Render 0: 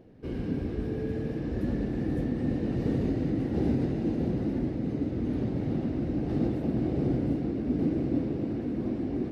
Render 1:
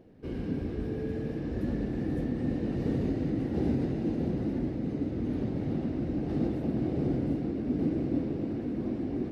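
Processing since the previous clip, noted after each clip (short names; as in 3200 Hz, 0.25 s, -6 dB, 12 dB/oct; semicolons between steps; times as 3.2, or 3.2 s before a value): notches 60/120 Hz; gain -1.5 dB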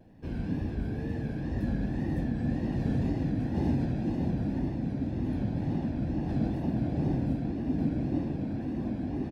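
comb 1.2 ms, depth 56%; wow and flutter 92 cents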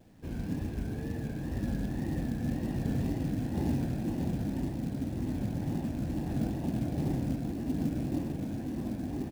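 companded quantiser 6-bit; gain -2.5 dB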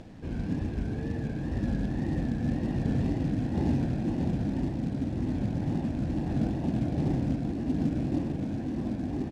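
upward compressor, threshold -42 dBFS; air absorption 81 m; gain +3.5 dB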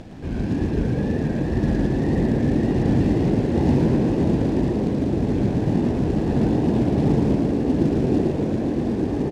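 frequency-shifting echo 0.113 s, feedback 57%, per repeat +75 Hz, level -4 dB; gain +7 dB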